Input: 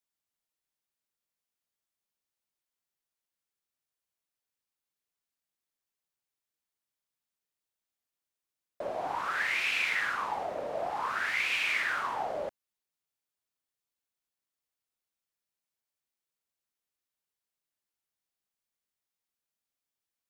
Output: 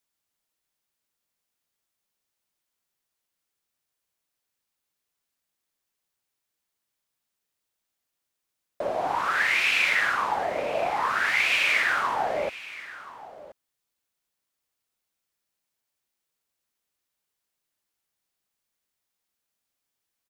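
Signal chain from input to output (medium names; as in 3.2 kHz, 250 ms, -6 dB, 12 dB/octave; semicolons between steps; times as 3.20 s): delay 1027 ms -17 dB; trim +7 dB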